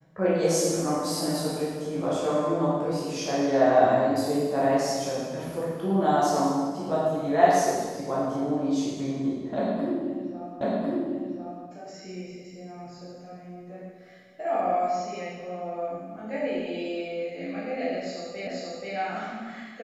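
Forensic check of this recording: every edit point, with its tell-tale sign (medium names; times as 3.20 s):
10.61 s: repeat of the last 1.05 s
18.47 s: repeat of the last 0.48 s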